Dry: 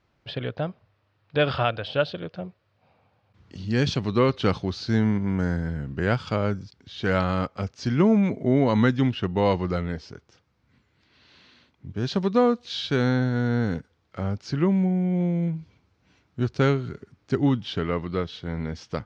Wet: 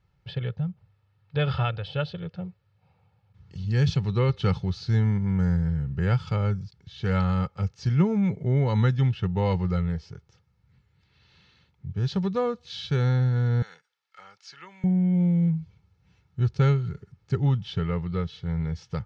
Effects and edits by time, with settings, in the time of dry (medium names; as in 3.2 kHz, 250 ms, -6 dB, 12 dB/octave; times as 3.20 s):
0.56–0.77 s: time-frequency box 240–5800 Hz -11 dB
13.62–14.84 s: high-pass 1.3 kHz
whole clip: resonant low shelf 230 Hz +7.5 dB, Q 3; comb 2.3 ms, depth 58%; trim -6.5 dB